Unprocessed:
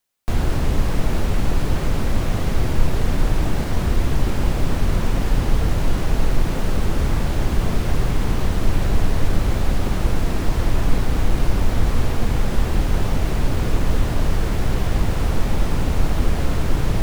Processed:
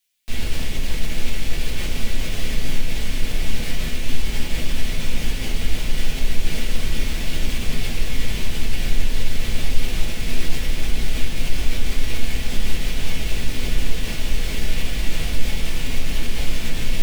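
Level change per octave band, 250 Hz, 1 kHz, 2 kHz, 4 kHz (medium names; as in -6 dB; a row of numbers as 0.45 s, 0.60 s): -7.0 dB, -10.0 dB, +1.5 dB, +5.5 dB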